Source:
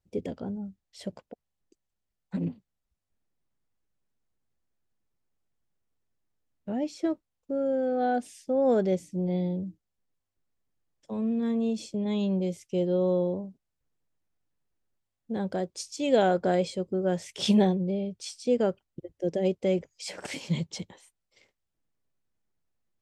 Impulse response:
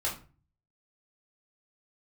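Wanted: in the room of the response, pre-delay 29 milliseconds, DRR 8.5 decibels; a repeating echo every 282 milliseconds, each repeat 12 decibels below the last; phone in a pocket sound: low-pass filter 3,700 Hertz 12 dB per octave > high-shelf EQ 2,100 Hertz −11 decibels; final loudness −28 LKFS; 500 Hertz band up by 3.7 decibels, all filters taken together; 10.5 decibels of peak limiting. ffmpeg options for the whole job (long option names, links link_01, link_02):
-filter_complex "[0:a]equalizer=frequency=500:width_type=o:gain=5,alimiter=limit=-17.5dB:level=0:latency=1,aecho=1:1:282|564|846:0.251|0.0628|0.0157,asplit=2[link_01][link_02];[1:a]atrim=start_sample=2205,adelay=29[link_03];[link_02][link_03]afir=irnorm=-1:irlink=0,volume=-14.5dB[link_04];[link_01][link_04]amix=inputs=2:normalize=0,lowpass=3700,highshelf=frequency=2100:gain=-11"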